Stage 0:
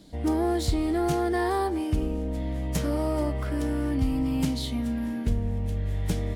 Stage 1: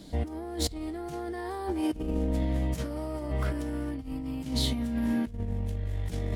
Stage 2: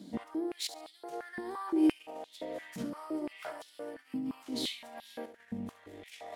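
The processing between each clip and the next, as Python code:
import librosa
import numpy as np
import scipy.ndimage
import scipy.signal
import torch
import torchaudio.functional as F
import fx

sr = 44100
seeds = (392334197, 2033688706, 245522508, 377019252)

y1 = fx.over_compress(x, sr, threshold_db=-30.0, ratio=-0.5)
y2 = fx.echo_feedback(y1, sr, ms=70, feedback_pct=26, wet_db=-11)
y2 = fx.filter_held_highpass(y2, sr, hz=5.8, low_hz=220.0, high_hz=3700.0)
y2 = F.gain(torch.from_numpy(y2), -7.0).numpy()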